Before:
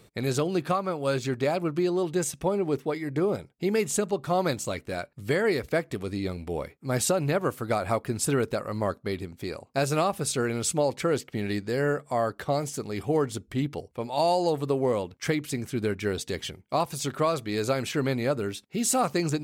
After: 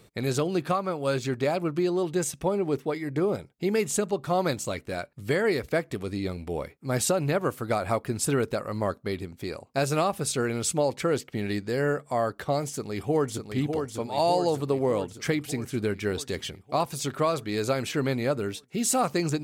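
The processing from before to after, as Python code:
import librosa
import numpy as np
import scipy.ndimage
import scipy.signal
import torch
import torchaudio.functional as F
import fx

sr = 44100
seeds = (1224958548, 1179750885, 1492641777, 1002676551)

y = fx.echo_throw(x, sr, start_s=12.68, length_s=0.75, ms=600, feedback_pct=65, wet_db=-5.5)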